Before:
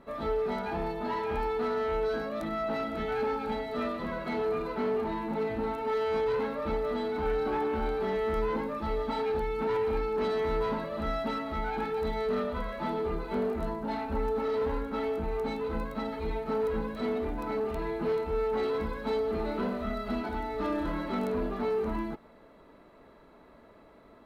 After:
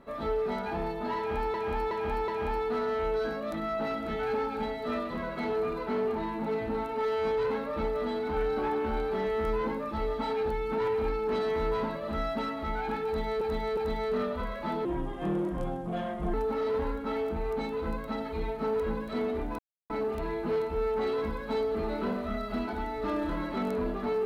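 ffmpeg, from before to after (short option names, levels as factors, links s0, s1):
-filter_complex "[0:a]asplit=9[s0][s1][s2][s3][s4][s5][s6][s7][s8];[s0]atrim=end=1.542[s9];[s1]atrim=start=1.168:end=1.542[s10];[s2]atrim=start=1.168:end=1.542[s11];[s3]atrim=start=1.168:end=12.302[s12];[s4]atrim=start=11.938:end=12.302[s13];[s5]atrim=start=11.938:end=13.024[s14];[s6]atrim=start=13.02:end=14.21,asetpts=PTS-STARTPTS,asetrate=35280,aresample=44100[s15];[s7]atrim=start=14.206:end=17.46,asetpts=PTS-STARTPTS,afade=t=out:st=3.25:d=0.004:c=hsin,apad=pad_dur=0.31[s16];[s8]atrim=start=17.46,asetpts=PTS-STARTPTS,afade=t=in:d=0.004:c=hsin[s17];[s9][s10]acrossfade=d=0.004:c1=hsin:c2=hsin[s18];[s18][s11]acrossfade=d=0.004:c1=hsin:c2=hsin[s19];[s19][s12]acrossfade=d=0.004:c1=hsin:c2=hsin[s20];[s20][s13]acrossfade=d=0.004:c1=hsin:c2=hsin[s21];[s21][s14]acrossfade=d=0.004:c1=hsin:c2=hsin[s22];[s22][s15]acrossfade=d=0.004:c1=hsin:c2=hsin[s23];[s16][s17]concat=n=2:v=0:a=1[s24];[s23][s24]acrossfade=d=0.004:c1=hsin:c2=hsin"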